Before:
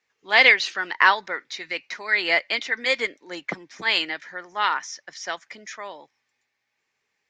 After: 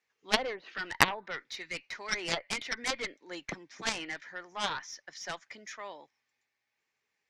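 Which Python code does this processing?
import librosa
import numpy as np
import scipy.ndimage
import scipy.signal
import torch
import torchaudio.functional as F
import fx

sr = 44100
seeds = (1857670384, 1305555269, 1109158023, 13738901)

y = fx.env_lowpass_down(x, sr, base_hz=700.0, full_db=-14.0)
y = fx.cheby_harmonics(y, sr, harmonics=(2, 6, 7), levels_db=(-17, -30, -13), full_scale_db=-2.5)
y = y * librosa.db_to_amplitude(-1.5)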